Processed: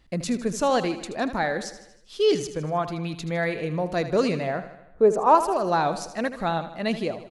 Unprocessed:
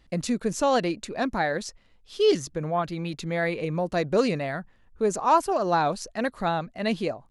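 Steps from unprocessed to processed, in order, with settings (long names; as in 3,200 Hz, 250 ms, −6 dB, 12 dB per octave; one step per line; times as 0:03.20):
0:04.47–0:05.35: drawn EQ curve 190 Hz 0 dB, 480 Hz +8 dB, 4,600 Hz −9 dB
on a send: repeating echo 78 ms, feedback 56%, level −12.5 dB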